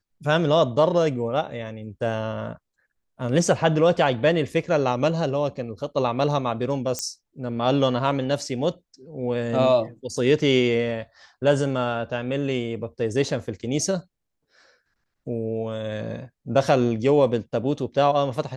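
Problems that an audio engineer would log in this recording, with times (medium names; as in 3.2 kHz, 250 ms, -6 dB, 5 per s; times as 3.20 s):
6.99 s: pop -13 dBFS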